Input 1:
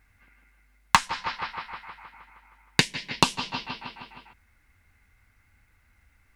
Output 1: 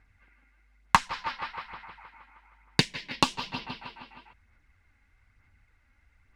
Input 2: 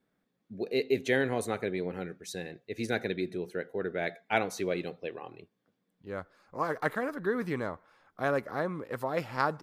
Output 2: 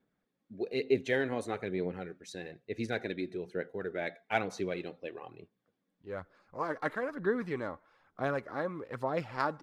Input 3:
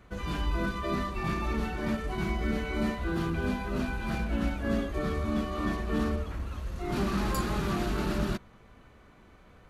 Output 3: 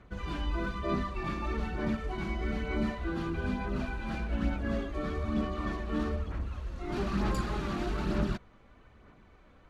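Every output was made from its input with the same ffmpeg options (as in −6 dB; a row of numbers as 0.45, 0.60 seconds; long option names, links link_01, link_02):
-af "adynamicsmooth=sensitivity=2:basefreq=7400,aphaser=in_gain=1:out_gain=1:delay=3.7:decay=0.36:speed=1.1:type=sinusoidal,volume=-3.5dB"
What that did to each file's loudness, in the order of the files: −2.5, −2.5, −2.5 LU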